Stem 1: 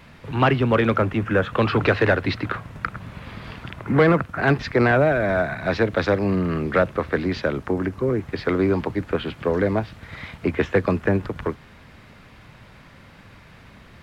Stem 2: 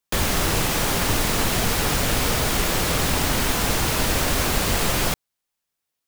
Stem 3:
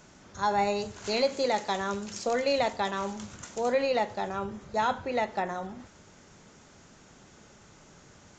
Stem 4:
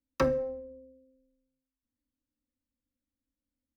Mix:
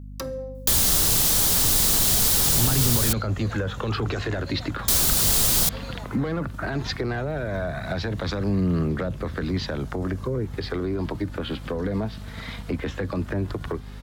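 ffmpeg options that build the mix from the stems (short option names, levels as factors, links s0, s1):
-filter_complex "[0:a]highshelf=f=3000:g=-8.5,alimiter=limit=0.158:level=0:latency=1:release=22,aphaser=in_gain=1:out_gain=1:delay=4.7:decay=0.29:speed=0.15:type=triangular,adelay=2250,volume=1.12[s0];[1:a]adelay=550,volume=0.668,asplit=3[s1][s2][s3];[s1]atrim=end=3.13,asetpts=PTS-STARTPTS,afade=t=out:st=3.126:d=0.004:c=hsin[s4];[s2]atrim=start=3.13:end=4.88,asetpts=PTS-STARTPTS,volume=0[s5];[s3]atrim=start=4.88,asetpts=PTS-STARTPTS,afade=t=in:d=0.004:c=hsin[s6];[s4][s5][s6]concat=n=3:v=0:a=1[s7];[2:a]adelay=2000,volume=0.15[s8];[3:a]alimiter=limit=0.075:level=0:latency=1:release=133,volume=0.891[s9];[s0][s7][s8][s9]amix=inputs=4:normalize=0,acrossover=split=200[s10][s11];[s11]acompressor=threshold=0.0398:ratio=4[s12];[s10][s12]amix=inputs=2:normalize=0,aexciter=amount=4.5:drive=3.5:freq=3400,aeval=exprs='val(0)+0.0141*(sin(2*PI*50*n/s)+sin(2*PI*2*50*n/s)/2+sin(2*PI*3*50*n/s)/3+sin(2*PI*4*50*n/s)/4+sin(2*PI*5*50*n/s)/5)':c=same"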